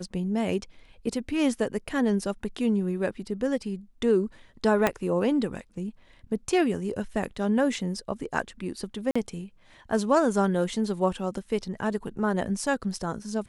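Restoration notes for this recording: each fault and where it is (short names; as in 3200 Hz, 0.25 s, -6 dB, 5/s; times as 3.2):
4.87 pop -8 dBFS
9.11–9.15 gap 45 ms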